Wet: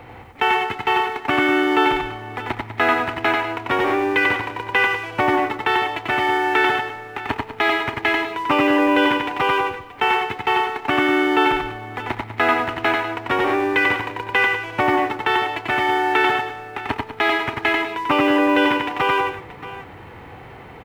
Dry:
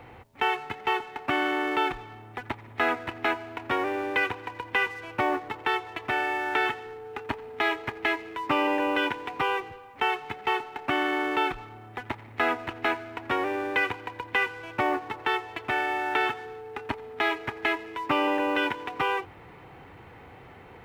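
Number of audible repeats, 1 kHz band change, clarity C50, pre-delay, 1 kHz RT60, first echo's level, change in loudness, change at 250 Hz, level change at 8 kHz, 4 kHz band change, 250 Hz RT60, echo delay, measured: 3, +8.5 dB, no reverb, no reverb, no reverb, -3.0 dB, +8.5 dB, +10.5 dB, no reading, +8.5 dB, no reverb, 92 ms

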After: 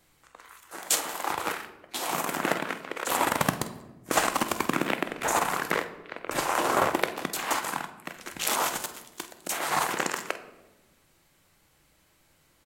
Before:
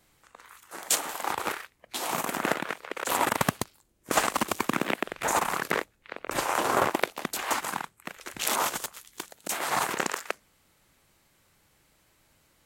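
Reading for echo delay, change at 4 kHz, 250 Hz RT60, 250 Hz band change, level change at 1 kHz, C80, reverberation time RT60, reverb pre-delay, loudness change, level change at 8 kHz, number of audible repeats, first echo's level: 49 ms, +0.5 dB, 1.6 s, +1.0 dB, +0.5 dB, 14.5 dB, 1.1 s, 3 ms, +0.5 dB, +0.5 dB, 1, -13.5 dB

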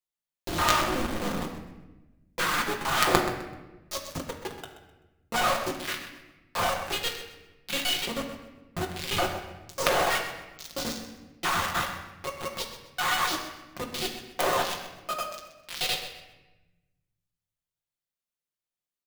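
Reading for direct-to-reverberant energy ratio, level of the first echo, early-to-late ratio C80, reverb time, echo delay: 0.5 dB, -12.0 dB, 7.5 dB, 1.1 s, 128 ms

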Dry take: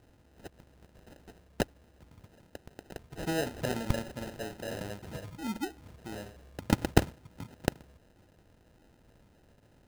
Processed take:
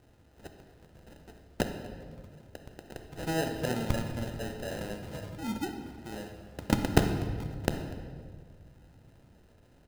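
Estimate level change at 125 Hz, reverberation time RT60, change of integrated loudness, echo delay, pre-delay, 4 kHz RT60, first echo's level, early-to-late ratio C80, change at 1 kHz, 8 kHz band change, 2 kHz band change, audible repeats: +2.5 dB, 1.8 s, +1.0 dB, 244 ms, 14 ms, 1.2 s, -21.0 dB, 8.0 dB, +1.5 dB, +0.5 dB, +1.0 dB, 1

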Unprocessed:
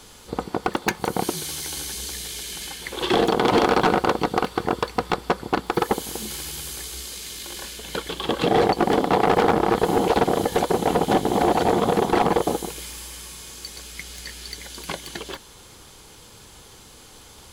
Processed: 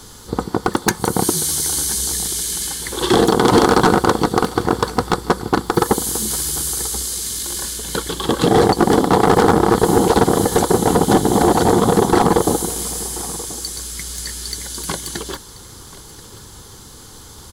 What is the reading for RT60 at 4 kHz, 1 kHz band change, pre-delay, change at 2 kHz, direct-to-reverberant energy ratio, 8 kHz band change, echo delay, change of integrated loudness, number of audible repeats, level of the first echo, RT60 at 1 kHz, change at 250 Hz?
no reverb, +4.5 dB, no reverb, +4.0 dB, no reverb, +13.0 dB, 1033 ms, +6.0 dB, 1, -18.5 dB, no reverb, +7.5 dB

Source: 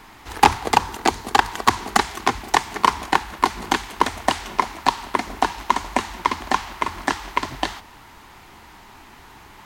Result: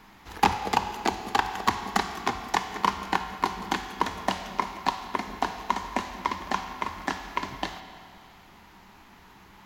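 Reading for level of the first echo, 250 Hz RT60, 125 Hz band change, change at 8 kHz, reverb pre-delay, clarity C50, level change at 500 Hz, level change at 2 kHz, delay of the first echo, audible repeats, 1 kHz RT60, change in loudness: no echo, 2.2 s, -5.5 dB, -9.5 dB, 6 ms, 9.0 dB, -7.0 dB, -7.5 dB, no echo, no echo, 2.2 s, -7.0 dB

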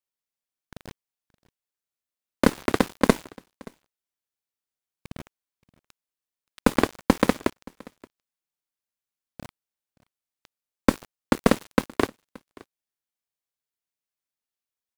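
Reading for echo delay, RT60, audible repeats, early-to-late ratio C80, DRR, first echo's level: 575 ms, no reverb, 1, no reverb, no reverb, -24.0 dB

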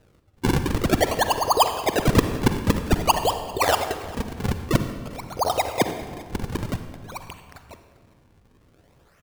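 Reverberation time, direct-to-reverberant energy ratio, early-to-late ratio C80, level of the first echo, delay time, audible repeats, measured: 1.6 s, 8.0 dB, 10.0 dB, -21.5 dB, 397 ms, 1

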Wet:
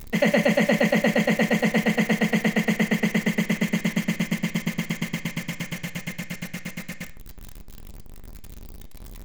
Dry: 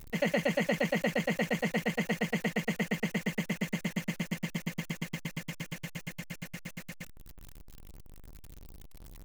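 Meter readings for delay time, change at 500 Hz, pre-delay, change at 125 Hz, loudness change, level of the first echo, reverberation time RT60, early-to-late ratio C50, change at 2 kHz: no echo, +8.5 dB, 3 ms, +9.0 dB, +9.5 dB, no echo, 0.50 s, 13.5 dB, +9.0 dB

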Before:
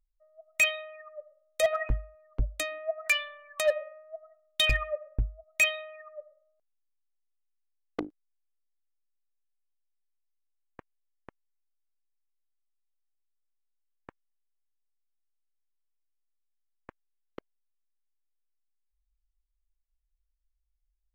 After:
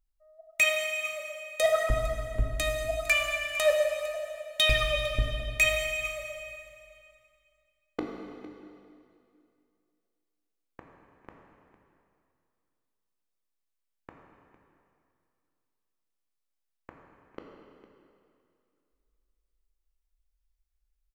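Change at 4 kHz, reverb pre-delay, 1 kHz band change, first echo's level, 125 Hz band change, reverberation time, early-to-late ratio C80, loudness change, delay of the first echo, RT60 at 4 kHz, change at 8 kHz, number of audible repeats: +3.0 dB, 6 ms, +3.5 dB, -16.5 dB, +2.5 dB, 2.5 s, 3.0 dB, +1.5 dB, 455 ms, 2.3 s, +2.5 dB, 1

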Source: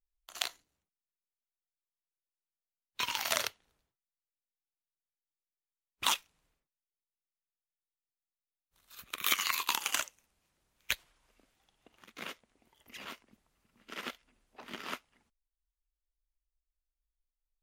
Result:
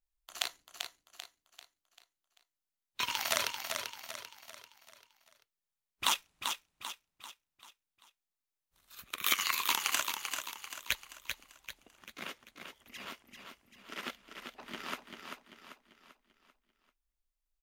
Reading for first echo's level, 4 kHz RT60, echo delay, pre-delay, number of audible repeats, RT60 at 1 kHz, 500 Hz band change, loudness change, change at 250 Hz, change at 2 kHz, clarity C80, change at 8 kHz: -6.0 dB, no reverb, 391 ms, no reverb, 5, no reverb, +1.0 dB, -1.0 dB, +1.0 dB, +1.0 dB, no reverb, +1.0 dB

